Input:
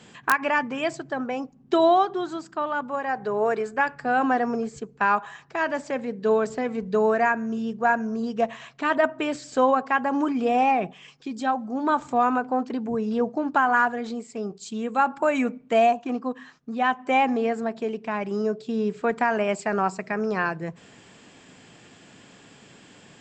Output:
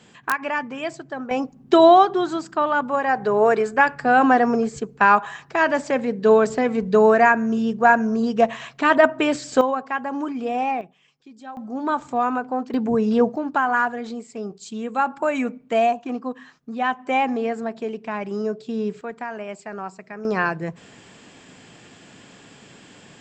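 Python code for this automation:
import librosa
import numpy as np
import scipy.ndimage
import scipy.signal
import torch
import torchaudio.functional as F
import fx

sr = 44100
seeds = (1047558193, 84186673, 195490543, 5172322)

y = fx.gain(x, sr, db=fx.steps((0.0, -2.0), (1.31, 6.5), (9.61, -3.0), (10.81, -13.0), (11.57, -0.5), (12.74, 6.5), (13.36, 0.0), (19.01, -8.5), (20.25, 3.5)))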